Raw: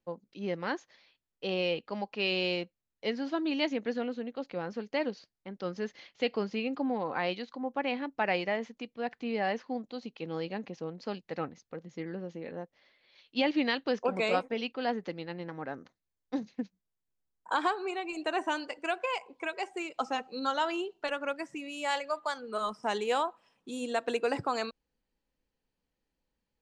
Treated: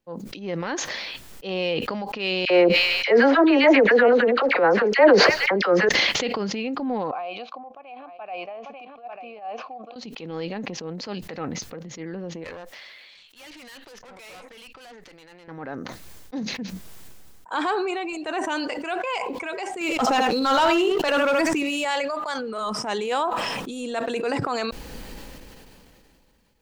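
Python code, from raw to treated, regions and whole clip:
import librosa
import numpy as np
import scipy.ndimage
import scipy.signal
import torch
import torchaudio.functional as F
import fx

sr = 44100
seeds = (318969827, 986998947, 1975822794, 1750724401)

y = fx.chain(x, sr, fx.band_shelf(hz=880.0, db=15.0, octaves=3.0),
    fx.dispersion(late='lows', ms=56.0, hz=1300.0),
    fx.echo_wet_highpass(ms=148, feedback_pct=61, hz=4100.0, wet_db=-23), at=(2.45, 5.89))
y = fx.chain(y, sr, fx.vowel_filter(vowel='a'),
    fx.echo_single(ms=893, db=-17.5),
    fx.upward_expand(threshold_db=-58.0, expansion=1.5), at=(7.11, 9.96))
y = fx.chain(y, sr, fx.highpass(hz=1500.0, slope=6),
    fx.tube_stage(drive_db=47.0, bias=0.6), at=(12.44, 15.48))
y = fx.chain(y, sr, fx.echo_single(ms=77, db=-9.5),
    fx.leveller(passes=2),
    fx.sustainer(db_per_s=23.0), at=(19.81, 21.85))
y = fx.transient(y, sr, attack_db=-7, sustain_db=0)
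y = fx.sustainer(y, sr, db_per_s=21.0)
y = y * 10.0 ** (5.5 / 20.0)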